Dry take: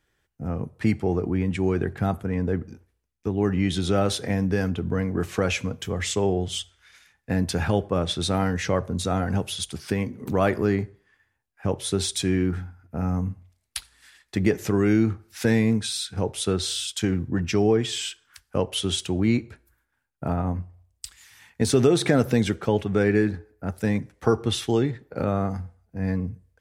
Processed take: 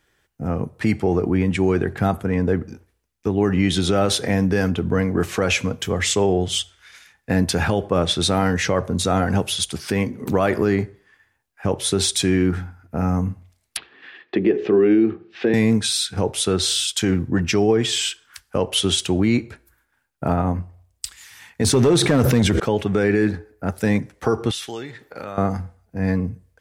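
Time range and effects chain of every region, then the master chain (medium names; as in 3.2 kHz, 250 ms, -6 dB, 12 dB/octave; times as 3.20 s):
13.77–15.54 s: cabinet simulation 230–3000 Hz, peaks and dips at 370 Hz +9 dB, 600 Hz -4 dB, 940 Hz -9 dB, 1.4 kHz -9 dB, 2.1 kHz -7 dB + hum notches 60/120/180/240/300/360/420/480 Hz + three bands compressed up and down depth 40%
21.64–22.60 s: bass shelf 190 Hz +7.5 dB + hard clipper -11.5 dBFS + decay stretcher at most 49 dB/s
24.51–25.38 s: tilt shelf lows -7 dB, about 640 Hz + compression 2:1, threshold -45 dBFS
whole clip: bass shelf 180 Hz -5 dB; peak limiter -16 dBFS; trim +7.5 dB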